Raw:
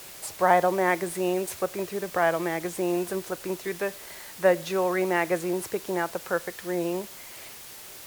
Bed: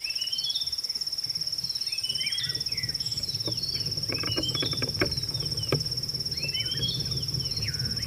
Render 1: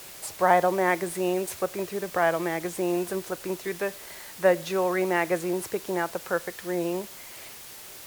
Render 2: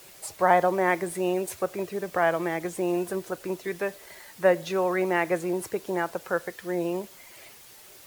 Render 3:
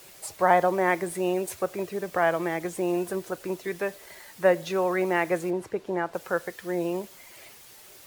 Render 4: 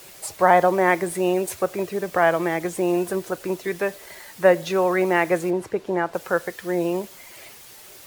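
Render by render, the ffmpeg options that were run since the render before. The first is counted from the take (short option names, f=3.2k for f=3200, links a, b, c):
-af anull
-af "afftdn=nr=7:nf=-44"
-filter_complex "[0:a]asplit=3[a][b][c];[a]afade=t=out:st=5.49:d=0.02[d];[b]aemphasis=mode=reproduction:type=75kf,afade=t=in:st=5.49:d=0.02,afade=t=out:st=6.13:d=0.02[e];[c]afade=t=in:st=6.13:d=0.02[f];[d][e][f]amix=inputs=3:normalize=0"
-af "volume=5dB,alimiter=limit=-3dB:level=0:latency=1"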